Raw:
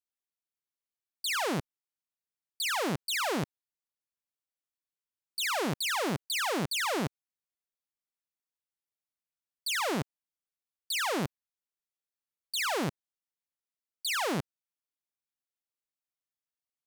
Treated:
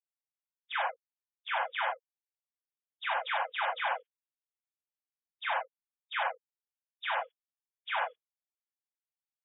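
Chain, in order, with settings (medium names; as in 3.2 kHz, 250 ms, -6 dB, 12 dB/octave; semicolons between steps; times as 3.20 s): formants replaced by sine waves; gated-style reverb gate 200 ms flat, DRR -3 dB; time stretch by phase-locked vocoder 0.56×; trim -4.5 dB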